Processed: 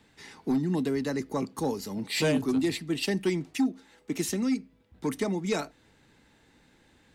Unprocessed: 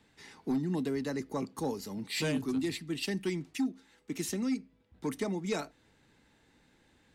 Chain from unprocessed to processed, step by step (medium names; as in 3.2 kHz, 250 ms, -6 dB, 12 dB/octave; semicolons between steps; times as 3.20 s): 1.96–4.24 s: peaking EQ 620 Hz +5 dB 1.3 oct; trim +4.5 dB